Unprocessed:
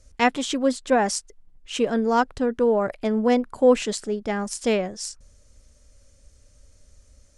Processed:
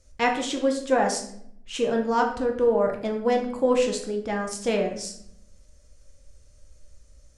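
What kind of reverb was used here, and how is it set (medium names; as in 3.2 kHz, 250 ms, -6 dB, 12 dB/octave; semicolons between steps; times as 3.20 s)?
simulated room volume 140 m³, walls mixed, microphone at 0.71 m; trim -4 dB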